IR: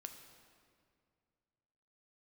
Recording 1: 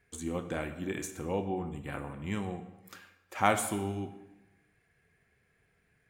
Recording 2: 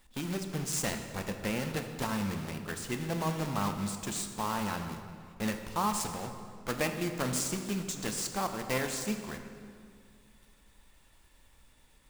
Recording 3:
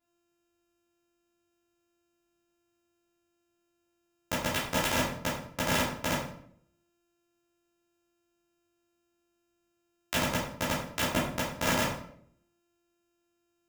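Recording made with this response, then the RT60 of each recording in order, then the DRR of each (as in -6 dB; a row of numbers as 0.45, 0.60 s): 2; 1.1, 2.2, 0.65 s; 8.5, 5.5, -9.0 dB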